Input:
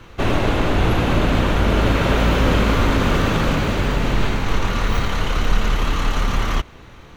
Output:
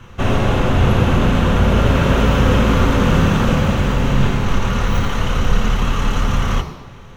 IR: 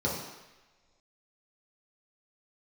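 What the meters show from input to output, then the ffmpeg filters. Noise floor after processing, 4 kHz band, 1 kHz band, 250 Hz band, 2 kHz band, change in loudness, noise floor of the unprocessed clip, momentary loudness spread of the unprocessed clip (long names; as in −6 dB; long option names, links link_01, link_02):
−37 dBFS, 0.0 dB, +1.5 dB, +3.5 dB, +0.5 dB, +3.0 dB, −42 dBFS, 5 LU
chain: -filter_complex "[0:a]asplit=2[link_01][link_02];[link_02]highshelf=frequency=6200:gain=10[link_03];[1:a]atrim=start_sample=2205,asetrate=41454,aresample=44100[link_04];[link_03][link_04]afir=irnorm=-1:irlink=0,volume=-15dB[link_05];[link_01][link_05]amix=inputs=2:normalize=0,volume=1dB"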